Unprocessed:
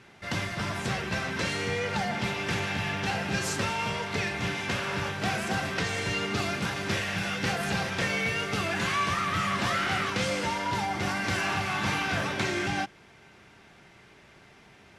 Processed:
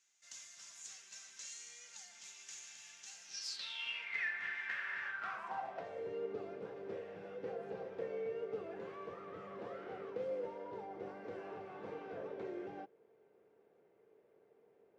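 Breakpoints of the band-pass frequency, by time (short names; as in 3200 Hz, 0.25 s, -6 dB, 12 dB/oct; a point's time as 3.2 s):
band-pass, Q 7.1
3.21 s 6800 Hz
4.27 s 1800 Hz
5.03 s 1800 Hz
6.07 s 460 Hz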